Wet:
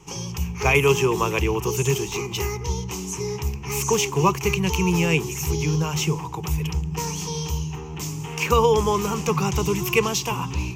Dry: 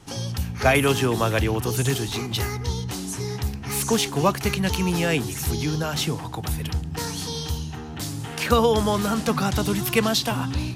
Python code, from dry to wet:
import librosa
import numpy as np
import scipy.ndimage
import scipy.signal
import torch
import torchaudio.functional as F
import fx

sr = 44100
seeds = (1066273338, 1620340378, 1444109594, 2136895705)

y = fx.ripple_eq(x, sr, per_octave=0.75, db=14)
y = F.gain(torch.from_numpy(y), -2.0).numpy()